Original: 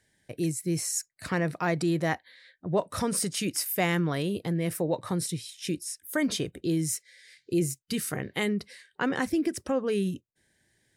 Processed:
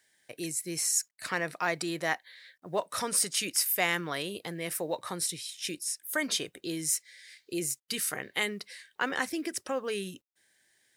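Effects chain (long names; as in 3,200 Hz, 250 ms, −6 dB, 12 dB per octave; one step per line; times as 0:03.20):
high-pass filter 1,100 Hz 6 dB per octave
log-companded quantiser 8 bits
level +3 dB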